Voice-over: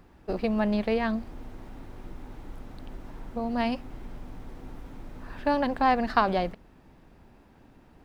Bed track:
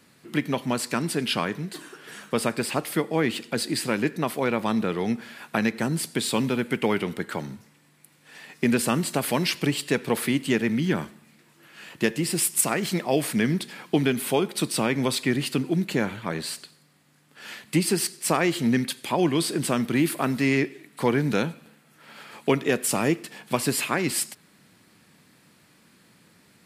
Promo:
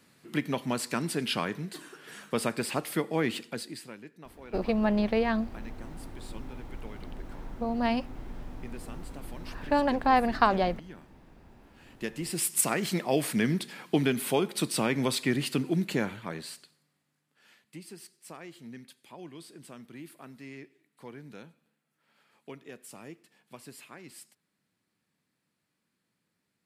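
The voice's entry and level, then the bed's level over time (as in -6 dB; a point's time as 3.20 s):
4.25 s, 0.0 dB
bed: 3.38 s -4.5 dB
4.04 s -23 dB
11.36 s -23 dB
12.56 s -3.5 dB
15.92 s -3.5 dB
17.69 s -23 dB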